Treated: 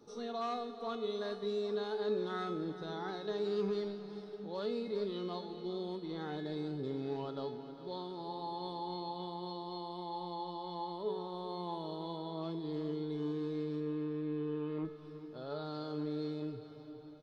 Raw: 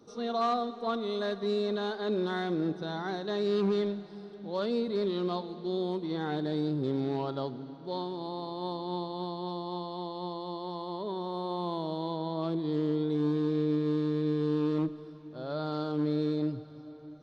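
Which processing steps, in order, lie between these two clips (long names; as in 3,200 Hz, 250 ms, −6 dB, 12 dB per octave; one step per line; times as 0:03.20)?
0:13.80–0:14.85: low-pass filter 3,000 Hz 24 dB per octave
in parallel at +2 dB: downward compressor, threshold −39 dBFS, peak gain reduction 13 dB
on the sum: tuned comb filter 430 Hz, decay 0.64 s, mix 90%
repeating echo 406 ms, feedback 47%, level −14 dB
level +7.5 dB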